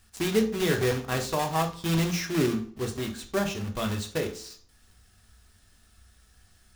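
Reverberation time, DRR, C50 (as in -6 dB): 0.50 s, 3.0 dB, 11.0 dB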